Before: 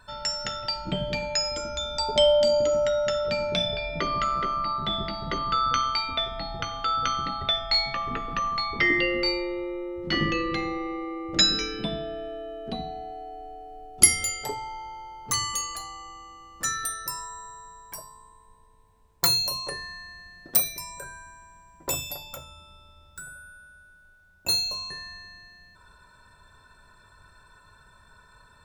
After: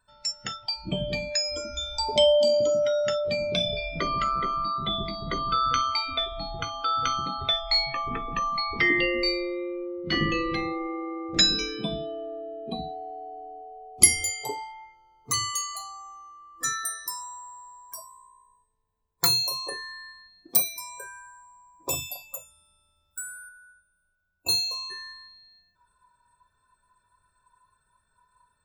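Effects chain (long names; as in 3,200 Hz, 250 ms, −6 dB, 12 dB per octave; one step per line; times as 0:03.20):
0:06.96–0:07.62: high-shelf EQ 12,000 Hz +5 dB
noise reduction from a noise print of the clip's start 18 dB
0:02.14–0:03.01: high-pass filter 81 Hz
0:22.34–0:23.49: high-shelf EQ 3,300 Hz +9 dB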